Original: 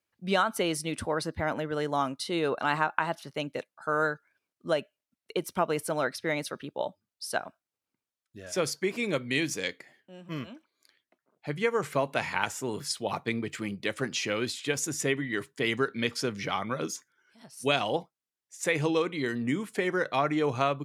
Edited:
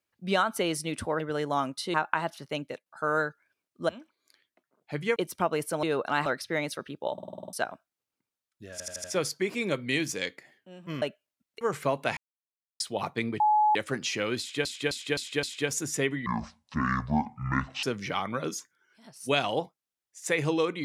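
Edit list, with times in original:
1.2–1.62 cut
2.36–2.79 move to 6
3.45–3.71 fade out, to -10 dB
4.74–5.33 swap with 10.44–11.71
6.87 stutter in place 0.05 s, 8 plays
8.46 stutter 0.08 s, 5 plays
12.27–12.9 mute
13.5–13.85 bleep 849 Hz -19 dBFS
14.49–14.75 loop, 5 plays
15.32–16.2 speed 56%

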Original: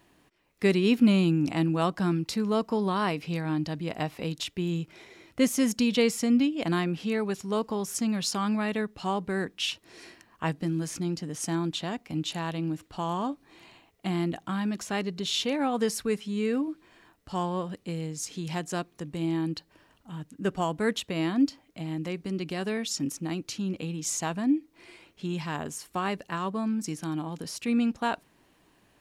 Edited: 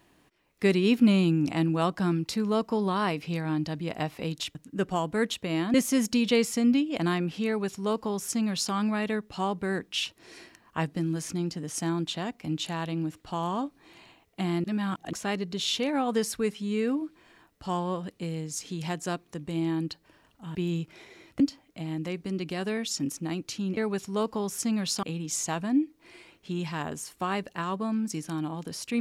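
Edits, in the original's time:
4.55–5.4 swap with 20.21–21.4
7.13–8.39 copy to 23.77
14.3–14.79 reverse

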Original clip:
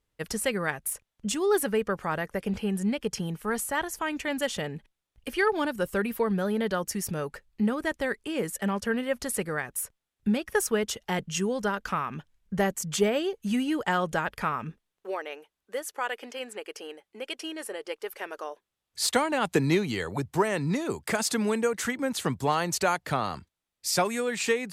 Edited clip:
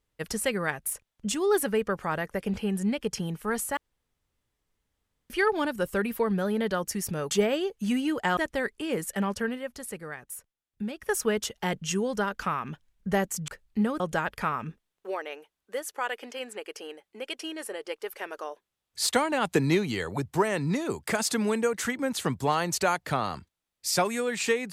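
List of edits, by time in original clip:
3.77–5.3 room tone
7.31–7.83 swap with 12.94–14
8.81–10.7 dip -8 dB, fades 0.32 s

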